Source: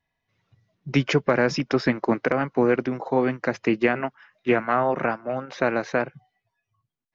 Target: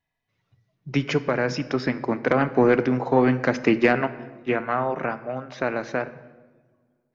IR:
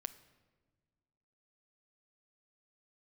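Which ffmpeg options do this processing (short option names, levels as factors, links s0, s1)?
-filter_complex "[0:a]asplit=3[s0][s1][s2];[s0]afade=t=out:st=2.26:d=0.02[s3];[s1]acontrast=73,afade=t=in:st=2.26:d=0.02,afade=t=out:st=4.06:d=0.02[s4];[s2]afade=t=in:st=4.06:d=0.02[s5];[s3][s4][s5]amix=inputs=3:normalize=0[s6];[1:a]atrim=start_sample=2205[s7];[s6][s7]afir=irnorm=-1:irlink=0"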